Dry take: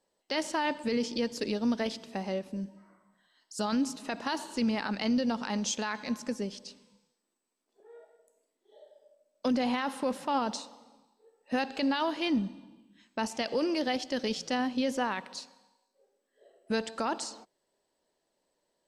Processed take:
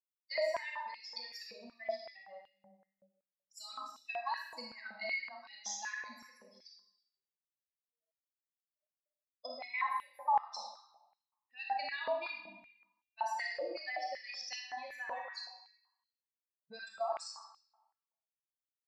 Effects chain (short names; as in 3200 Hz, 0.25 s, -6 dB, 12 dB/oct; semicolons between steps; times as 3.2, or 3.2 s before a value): per-bin expansion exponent 3; compressor, threshold -43 dBFS, peak gain reduction 15 dB; fixed phaser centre 2100 Hz, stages 8; digital reverb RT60 1 s, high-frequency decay 0.8×, pre-delay 0 ms, DRR -2.5 dB; stepped high-pass 5.3 Hz 510–2900 Hz; gain +4 dB